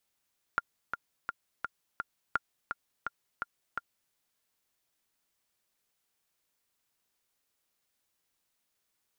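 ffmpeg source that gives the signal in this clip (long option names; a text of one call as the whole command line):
ffmpeg -f lavfi -i "aevalsrc='pow(10,(-14-6.5*gte(mod(t,5*60/169),60/169))/20)*sin(2*PI*1400*mod(t,60/169))*exp(-6.91*mod(t,60/169)/0.03)':duration=3.55:sample_rate=44100" out.wav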